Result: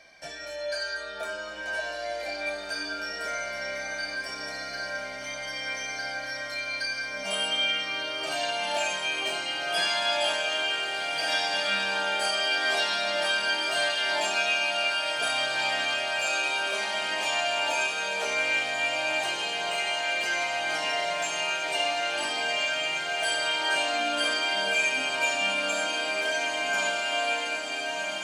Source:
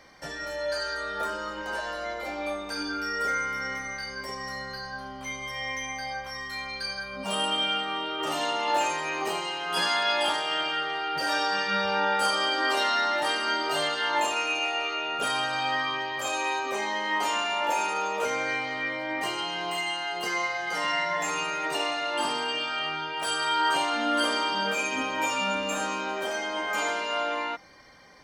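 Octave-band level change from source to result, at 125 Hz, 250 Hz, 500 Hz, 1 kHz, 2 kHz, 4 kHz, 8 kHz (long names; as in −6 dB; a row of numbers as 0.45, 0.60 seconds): can't be measured, −7.0 dB, +0.5 dB, −4.0 dB, +3.0 dB, +2.5 dB, +2.0 dB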